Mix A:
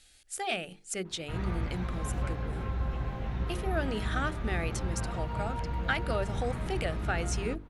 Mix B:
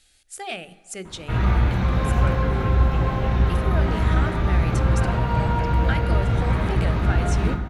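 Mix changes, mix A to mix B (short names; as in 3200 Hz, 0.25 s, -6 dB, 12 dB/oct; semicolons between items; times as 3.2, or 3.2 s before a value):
background +10.0 dB; reverb: on, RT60 2.1 s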